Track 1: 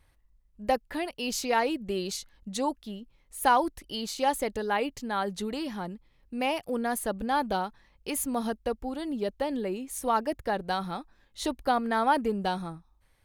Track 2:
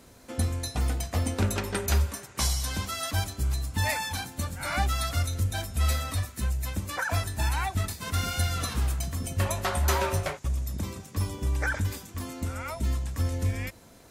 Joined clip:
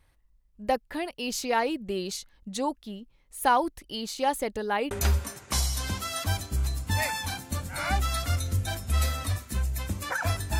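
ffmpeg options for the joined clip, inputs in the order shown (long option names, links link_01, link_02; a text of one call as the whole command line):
ffmpeg -i cue0.wav -i cue1.wav -filter_complex "[0:a]apad=whole_dur=10.59,atrim=end=10.59,atrim=end=4.912[link_01];[1:a]atrim=start=1.778:end=7.46[link_02];[link_01][link_02]acrossfade=duration=0.004:curve1=hsin:curve2=hsin" out.wav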